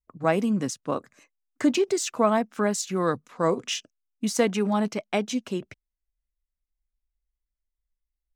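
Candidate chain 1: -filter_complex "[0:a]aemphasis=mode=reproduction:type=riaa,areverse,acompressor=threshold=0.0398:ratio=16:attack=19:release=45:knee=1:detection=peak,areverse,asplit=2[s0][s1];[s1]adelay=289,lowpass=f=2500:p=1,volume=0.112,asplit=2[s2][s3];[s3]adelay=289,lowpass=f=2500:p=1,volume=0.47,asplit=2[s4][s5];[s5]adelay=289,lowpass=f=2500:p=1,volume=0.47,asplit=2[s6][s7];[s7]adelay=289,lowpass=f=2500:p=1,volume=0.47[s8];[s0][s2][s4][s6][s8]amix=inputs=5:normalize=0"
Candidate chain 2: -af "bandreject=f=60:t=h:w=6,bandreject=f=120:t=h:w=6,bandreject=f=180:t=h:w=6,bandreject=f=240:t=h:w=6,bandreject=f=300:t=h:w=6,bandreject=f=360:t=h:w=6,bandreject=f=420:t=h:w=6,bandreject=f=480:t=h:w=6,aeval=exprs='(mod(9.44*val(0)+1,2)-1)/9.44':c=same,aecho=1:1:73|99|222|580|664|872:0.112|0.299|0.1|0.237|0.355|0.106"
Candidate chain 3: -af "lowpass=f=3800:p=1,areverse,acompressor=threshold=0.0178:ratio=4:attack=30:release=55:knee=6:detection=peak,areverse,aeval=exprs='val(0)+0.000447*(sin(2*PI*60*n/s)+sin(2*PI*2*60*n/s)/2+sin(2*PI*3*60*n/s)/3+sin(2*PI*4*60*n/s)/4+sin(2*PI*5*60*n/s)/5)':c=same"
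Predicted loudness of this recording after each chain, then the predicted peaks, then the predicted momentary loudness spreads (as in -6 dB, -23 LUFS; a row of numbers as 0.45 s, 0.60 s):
-31.0 LUFS, -27.0 LUFS, -34.5 LUFS; -16.0 dBFS, -15.0 dBFS, -20.0 dBFS; 9 LU, 11 LU, 6 LU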